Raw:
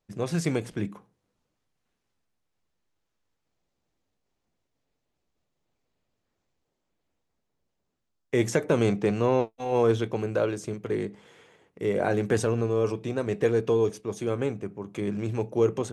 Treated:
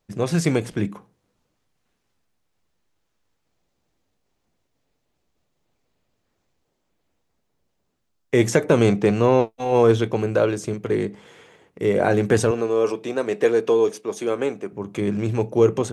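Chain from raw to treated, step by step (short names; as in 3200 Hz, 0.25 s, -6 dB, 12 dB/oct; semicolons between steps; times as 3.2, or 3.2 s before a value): 12.51–14.73 HPF 300 Hz 12 dB/oct; gain +6.5 dB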